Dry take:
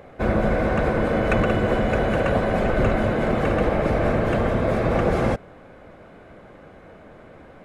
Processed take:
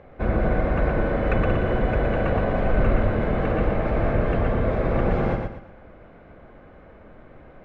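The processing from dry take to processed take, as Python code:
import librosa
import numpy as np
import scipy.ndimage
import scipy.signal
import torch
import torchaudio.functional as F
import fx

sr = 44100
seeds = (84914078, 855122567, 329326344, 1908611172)

y = scipy.signal.sosfilt(scipy.signal.butter(2, 3000.0, 'lowpass', fs=sr, output='sos'), x)
y = fx.low_shelf(y, sr, hz=66.0, db=10.5)
y = fx.echo_feedback(y, sr, ms=118, feedback_pct=33, wet_db=-4.5)
y = y * 10.0 ** (-4.5 / 20.0)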